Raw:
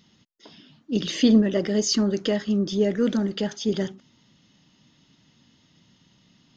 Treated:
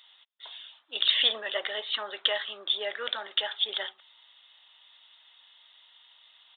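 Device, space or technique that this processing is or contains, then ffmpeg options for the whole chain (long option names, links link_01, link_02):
musical greeting card: -af "aresample=8000,aresample=44100,highpass=frequency=770:width=0.5412,highpass=frequency=770:width=1.3066,equalizer=frequency=3600:width_type=o:width=0.39:gain=10,volume=3.5dB"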